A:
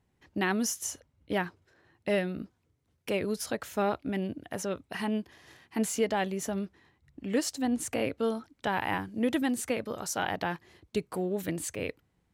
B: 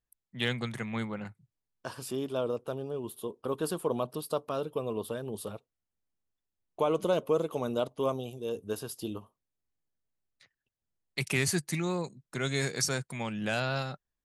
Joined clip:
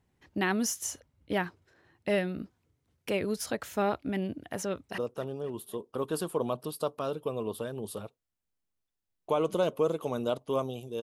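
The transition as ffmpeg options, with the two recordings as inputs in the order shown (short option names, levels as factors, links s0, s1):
-filter_complex "[0:a]apad=whole_dur=11.02,atrim=end=11.02,atrim=end=4.982[s0];[1:a]atrim=start=2.478:end=8.52[s1];[s0][s1]acrossfade=d=0.004:c1=hsin:c2=hsin,asplit=2[s2][s3];[s3]afade=t=in:st=4.63:d=0.01,afade=t=out:st=4.98:d=0.01,aecho=0:1:260|520|780|1040|1300:0.133352|0.0733437|0.040339|0.0221865|0.0122026[s4];[s2][s4]amix=inputs=2:normalize=0"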